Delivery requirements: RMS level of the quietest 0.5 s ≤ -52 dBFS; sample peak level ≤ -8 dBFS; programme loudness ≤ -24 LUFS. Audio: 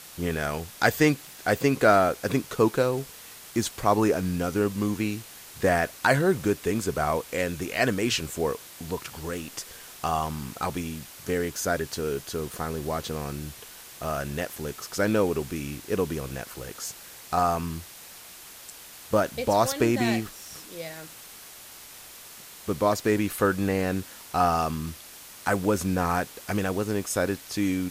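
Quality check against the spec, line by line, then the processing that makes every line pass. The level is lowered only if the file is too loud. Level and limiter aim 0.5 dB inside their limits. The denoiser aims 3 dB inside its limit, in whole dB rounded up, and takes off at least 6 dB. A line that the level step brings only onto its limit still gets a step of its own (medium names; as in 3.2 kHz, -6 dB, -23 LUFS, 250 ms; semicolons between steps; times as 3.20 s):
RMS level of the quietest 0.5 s -46 dBFS: fail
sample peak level -4.5 dBFS: fail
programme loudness -27.0 LUFS: pass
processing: noise reduction 9 dB, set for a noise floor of -46 dBFS; peak limiter -8.5 dBFS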